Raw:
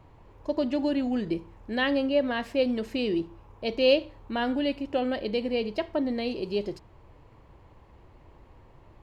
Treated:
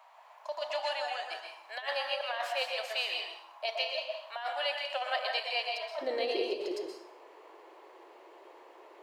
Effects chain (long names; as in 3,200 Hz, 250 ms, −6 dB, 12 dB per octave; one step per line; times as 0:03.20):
Chebyshev high-pass filter 640 Hz, order 5, from 0:06.01 350 Hz
compressor whose output falls as the input rises −34 dBFS, ratio −0.5
dense smooth reverb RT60 0.64 s, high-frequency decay 0.85×, pre-delay 110 ms, DRR 1.5 dB
level +1.5 dB